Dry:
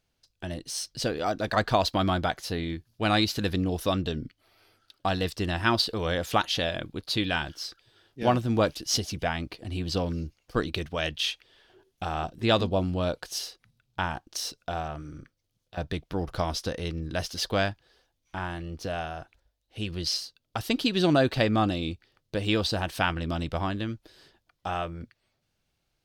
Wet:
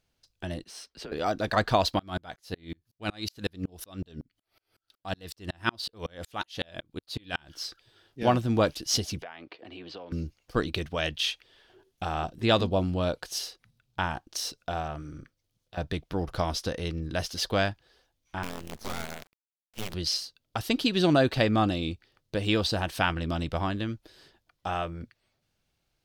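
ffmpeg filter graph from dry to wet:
-filter_complex "[0:a]asettb=1/sr,asplit=3[a][b][c];[a]atrim=end=0.644[d];[b]atrim=start=0.64:end=1.12,asetpts=PTS-STARTPTS,afade=t=in:d=0.004:c=qsin,afade=t=out:st=0.476:d=0.004:c=qsin,acrossover=split=300 2700:gain=0.141 1 0.224[e][f][g];[e][f][g]amix=inputs=3:normalize=0,acompressor=threshold=-37dB:ratio=6:attack=3.2:release=140:knee=1:detection=peak,afreqshift=-85[h];[c]atrim=start=1.116[i];[d][h]acrossfade=d=0.004:c1=hsin:c2=qsin[j];[j][i]acrossfade=d=0.004:c1=qsin:c2=hsin,asettb=1/sr,asplit=3[k][l][m];[k]atrim=end=1.994[n];[l]atrim=start=1.99:end=7.54,asetpts=PTS-STARTPTS,afade=t=in:d=0.004:c=qsin,afade=t=out:st=5.546:d=0.004:c=qsin,highshelf=f=6.1k:g=4.5,aeval=exprs='val(0)*pow(10,-38*if(lt(mod(-5.4*n/s,1),2*abs(-5.4)/1000),1-mod(-5.4*n/s,1)/(2*abs(-5.4)/1000),(mod(-5.4*n/s,1)-2*abs(-5.4)/1000)/(1-2*abs(-5.4)/1000))/20)':c=same[o];[m]atrim=start=7.536[p];[n][o]acrossfade=d=0.004:c1=hsin:c2=qsin[q];[q][p]acrossfade=d=0.004:c1=qsin:c2=hsin,asettb=1/sr,asplit=3[r][s][t];[r]atrim=end=9.224[u];[s]atrim=start=9.22:end=10.12,asetpts=PTS-STARTPTS,afade=t=in:d=0.004:c=qsin,afade=t=out:st=0.896:d=0.004:c=qsin,acrossover=split=310 3700:gain=0.126 1 0.0891[v][w][x];[v][w][x]amix=inputs=3:normalize=0,acompressor=threshold=-39dB:ratio=5:attack=3.2:release=140:knee=1:detection=peak,highpass=110,lowpass=7.5k[y];[t]atrim=start=10.116[z];[u][y]acrossfade=d=0.004:c1=hsin:c2=qsin[aa];[aa][z]acrossfade=d=0.004:c1=qsin:c2=hsin,asettb=1/sr,asplit=3[ab][ac][ad];[ab]atrim=end=18.434[ae];[ac]atrim=start=18.43:end=19.94,asetpts=PTS-STARTPTS,afade=t=in:d=0.004:c=qsin,afade=t=out:st=1.506:d=0.004:c=qsin,acrusher=bits=6:dc=4:mix=0:aa=0.000001,aeval=exprs='abs(val(0))':c=same,tremolo=f=220:d=0.571[af];[ad]atrim=start=19.936[ag];[ae][af]acrossfade=d=0.004:c1=hsin:c2=qsin[ah];[ah][ag]acrossfade=d=0.004:c1=qsin:c2=hsin"

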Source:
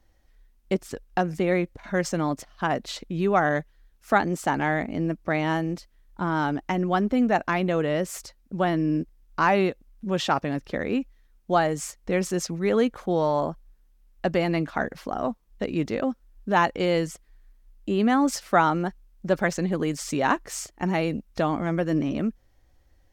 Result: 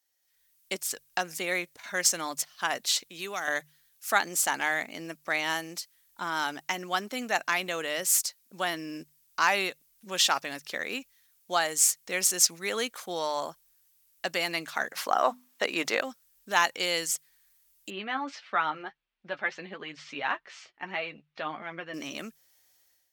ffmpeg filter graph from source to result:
-filter_complex "[0:a]asettb=1/sr,asplit=3[a][b][c];[a]atrim=end=3.074[d];[b]atrim=start=3.07:end=3.48,asetpts=PTS-STARTPTS,afade=t=in:d=0.004:c=qsin,afade=t=out:st=0.406:d=0.004:c=qsin,lowshelf=f=180:g=-11,acrossover=split=310|3000[e][f][g];[f]acompressor=threshold=-29dB:ratio=3:attack=3.2:release=140:knee=2.83:detection=peak[h];[e][h][g]amix=inputs=3:normalize=0[i];[c]atrim=start=3.476[j];[d][i]acrossfade=d=0.004:c1=hsin:c2=qsin[k];[k][j]acrossfade=d=0.004:c1=qsin:c2=hsin,asettb=1/sr,asplit=3[l][m][n];[l]atrim=end=14.934[o];[m]atrim=start=14.93:end=16.01,asetpts=PTS-STARTPTS,afade=t=in:d=0.004:c=qsin,afade=t=out:st=1.076:d=0.004:c=qsin,highpass=120,equalizer=f=940:w=0.38:g=11.5,bandreject=f=50:t=h:w=6,bandreject=f=100:t=h:w=6,bandreject=f=150:t=h:w=6,bandreject=f=200:t=h:w=6,bandreject=f=250:t=h:w=6[p];[n]atrim=start=16.006[q];[o][p]acrossfade=d=0.004:c1=hsin:c2=qsin[r];[r][q]acrossfade=d=0.004:c1=qsin:c2=hsin,asettb=1/sr,asplit=3[s][t][u];[s]atrim=end=17.904[v];[t]atrim=start=17.9:end=21.94,asetpts=PTS-STARTPTS,afade=t=in:d=0.004:c=qsin,afade=t=out:st=4.036:d=0.004:c=qsin,lowpass=f=3.1k:w=0.5412,lowpass=f=3.1k:w=1.3066,asplit=2[w][x];[x]adelay=14,volume=-10.5dB[y];[w][y]amix=inputs=2:normalize=0,atrim=end_sample=178164,flanger=delay=4.3:depth=4:regen=42:speed=1.6:shape=triangular[z];[u]atrim=start=21.936[aa];[v][z]acrossfade=d=0.004:c1=hsin:c2=qsin[ab];[ab][aa]acrossfade=d=0.004:c1=qsin:c2=hsin,aderivative,dynaudnorm=f=160:g=5:m=13dB,bandreject=f=50:t=h:w=6,bandreject=f=100:t=h:w=6,bandreject=f=150:t=h:w=6"

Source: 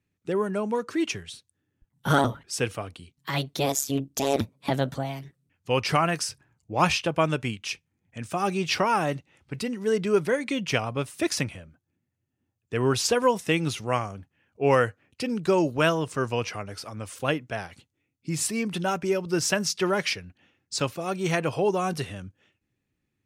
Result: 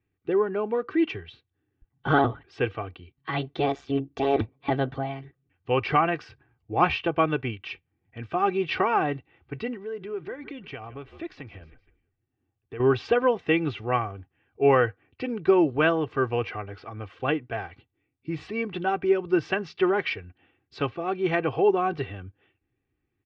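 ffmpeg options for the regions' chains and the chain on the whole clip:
-filter_complex "[0:a]asettb=1/sr,asplit=3[a][b][c];[a]atrim=end=9.774[d];[b]atrim=start=9.77:end=12.8,asetpts=PTS-STARTPTS,afade=t=in:d=0.004:c=qsin,afade=t=out:st=3.026:d=0.004:c=qsin,asplit=4[e][f][g][h];[f]adelay=156,afreqshift=-59,volume=-23dB[i];[g]adelay=312,afreqshift=-118,volume=-30.7dB[j];[h]adelay=468,afreqshift=-177,volume=-38.5dB[k];[e][i][j][k]amix=inputs=4:normalize=0,atrim=end_sample=133623,acompressor=threshold=-39dB:ratio=2.5:attack=3.2:release=140:knee=1:detection=peak[l];[c]atrim=start=12.796[m];[d][l]acrossfade=d=0.004:c1=hsin:c2=qsin[n];[n][m]acrossfade=d=0.004:c1=qsin:c2=hsin,lowpass=f=3.3k:w=0.5412,lowpass=f=3.3k:w=1.3066,aemphasis=mode=reproduction:type=50fm,aecho=1:1:2.6:0.57"

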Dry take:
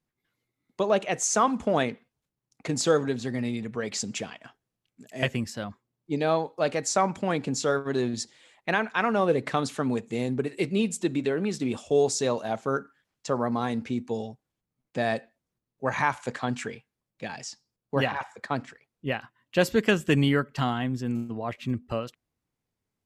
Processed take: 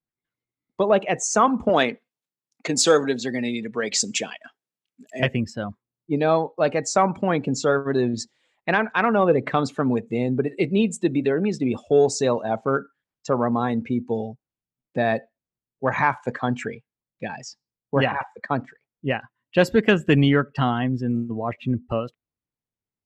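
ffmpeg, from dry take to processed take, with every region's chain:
-filter_complex "[0:a]asettb=1/sr,asplit=3[a][b][c];[a]atrim=end=1.694[d];[b]atrim=start=1.69:end=5.2,asetpts=PTS-STARTPTS,afade=t=in:d=0.004:c=qsin,afade=t=out:st=3.506:d=0.004:c=qsin,highpass=210,highshelf=f=2.3k:g=9.5[e];[c]atrim=start=5.196[f];[d][e]acrossfade=d=0.004:c1=hsin:c2=qsin[g];[g][f]acrossfade=d=0.004:c1=qsin:c2=hsin,afftdn=nr=15:nf=-40,highshelf=f=5k:g=-7,acontrast=36"

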